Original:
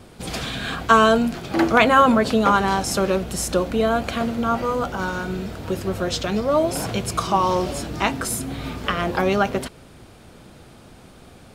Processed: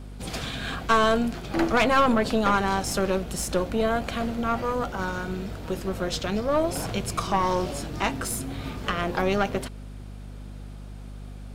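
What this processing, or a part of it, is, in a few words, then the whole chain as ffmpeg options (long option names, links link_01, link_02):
valve amplifier with mains hum: -af "aeval=exprs='(tanh(3.98*val(0)+0.55)-tanh(0.55))/3.98':channel_layout=same,aeval=exprs='val(0)+0.0158*(sin(2*PI*50*n/s)+sin(2*PI*2*50*n/s)/2+sin(2*PI*3*50*n/s)/3+sin(2*PI*4*50*n/s)/4+sin(2*PI*5*50*n/s)/5)':channel_layout=same,volume=-2dB"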